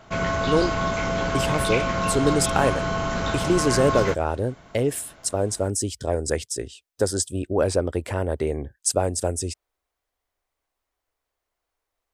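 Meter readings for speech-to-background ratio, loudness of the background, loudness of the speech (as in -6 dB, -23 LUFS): 0.0 dB, -25.0 LUFS, -25.0 LUFS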